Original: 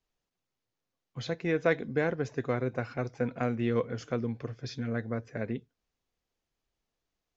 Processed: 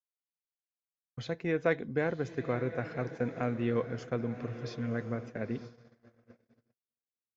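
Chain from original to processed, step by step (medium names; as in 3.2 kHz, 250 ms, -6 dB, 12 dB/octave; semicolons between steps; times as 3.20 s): echo that smears into a reverb 1020 ms, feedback 51%, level -12 dB; dynamic bell 5.6 kHz, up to -4 dB, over -54 dBFS, Q 0.85; gate -41 dBFS, range -59 dB; trim -2 dB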